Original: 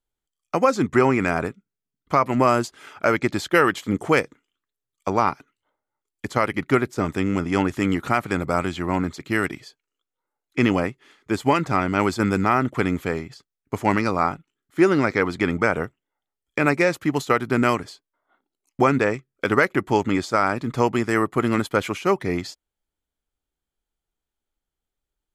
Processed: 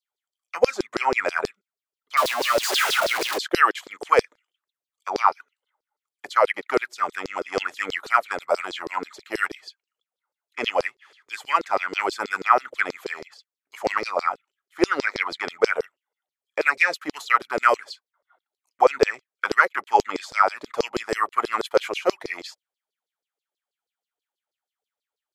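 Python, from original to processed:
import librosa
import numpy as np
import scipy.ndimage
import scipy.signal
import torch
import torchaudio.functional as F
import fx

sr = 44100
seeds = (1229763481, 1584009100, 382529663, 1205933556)

y = fx.clip_1bit(x, sr, at=(2.17, 3.38))
y = fx.filter_lfo_highpass(y, sr, shape='saw_down', hz=6.2, low_hz=400.0, high_hz=5100.0, q=6.3)
y = y * 10.0 ** (-5.0 / 20.0)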